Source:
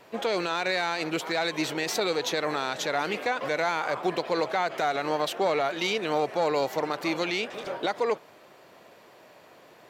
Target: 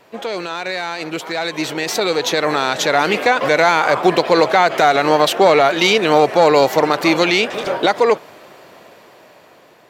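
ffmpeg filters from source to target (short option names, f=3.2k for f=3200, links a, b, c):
-af "dynaudnorm=f=650:g=7:m=11.5dB,volume=3dB"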